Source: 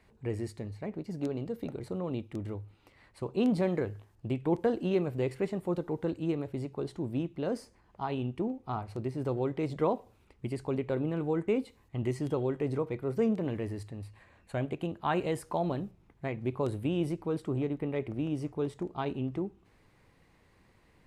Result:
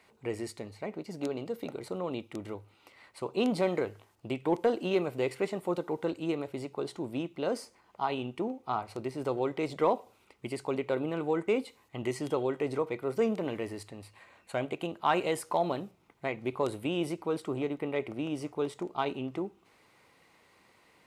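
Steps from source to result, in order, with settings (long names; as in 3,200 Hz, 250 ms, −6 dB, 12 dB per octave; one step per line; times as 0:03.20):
high-pass filter 650 Hz 6 dB per octave
notch filter 1,700 Hz, Q 8.4
in parallel at −9.5 dB: hard clipping −26.5 dBFS, distortion −20 dB
on the sum: level +4 dB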